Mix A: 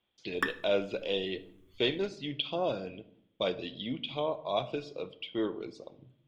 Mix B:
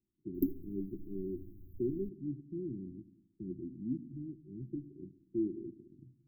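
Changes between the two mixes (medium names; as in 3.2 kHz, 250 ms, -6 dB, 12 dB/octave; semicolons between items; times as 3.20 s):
background +11.0 dB; master: add brick-wall FIR band-stop 390–12000 Hz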